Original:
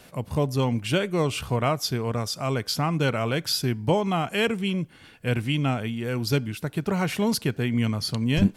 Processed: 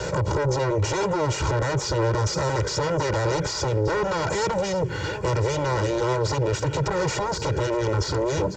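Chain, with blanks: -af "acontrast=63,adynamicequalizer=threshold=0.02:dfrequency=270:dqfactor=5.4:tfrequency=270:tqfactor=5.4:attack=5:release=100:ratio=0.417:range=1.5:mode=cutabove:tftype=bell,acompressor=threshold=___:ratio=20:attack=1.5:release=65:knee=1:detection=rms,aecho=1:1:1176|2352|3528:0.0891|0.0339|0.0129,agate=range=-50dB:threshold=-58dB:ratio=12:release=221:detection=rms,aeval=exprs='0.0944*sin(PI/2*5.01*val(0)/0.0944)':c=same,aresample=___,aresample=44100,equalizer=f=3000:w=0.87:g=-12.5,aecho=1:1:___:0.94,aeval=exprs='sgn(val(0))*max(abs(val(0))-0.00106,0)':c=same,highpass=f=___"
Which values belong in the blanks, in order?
-28dB, 16000, 2.1, 49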